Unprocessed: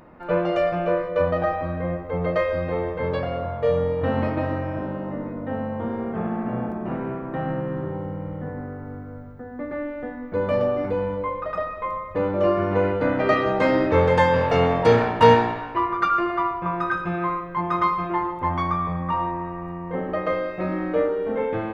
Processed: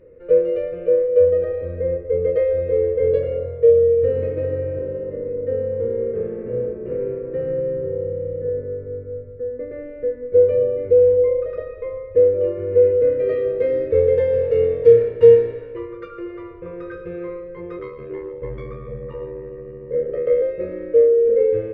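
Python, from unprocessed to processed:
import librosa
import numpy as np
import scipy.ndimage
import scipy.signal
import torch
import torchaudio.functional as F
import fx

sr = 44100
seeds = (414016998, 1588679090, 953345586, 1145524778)

y = fx.ring_mod(x, sr, carrier_hz=37.0, at=(17.78, 20.42))
y = fx.rider(y, sr, range_db=3, speed_s=0.5)
y = fx.curve_eq(y, sr, hz=(110.0, 190.0, 310.0, 490.0, 740.0, 2100.0, 3400.0, 6600.0), db=(0, -14, -8, 14, -29, -9, -15, -21))
y = y * 10.0 ** (-1.0 / 20.0)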